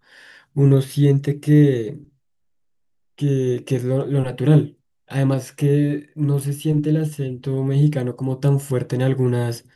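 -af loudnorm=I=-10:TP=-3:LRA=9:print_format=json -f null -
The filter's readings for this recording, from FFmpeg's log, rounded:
"input_i" : "-20.1",
"input_tp" : "-3.2",
"input_lra" : "1.3",
"input_thresh" : "-30.4",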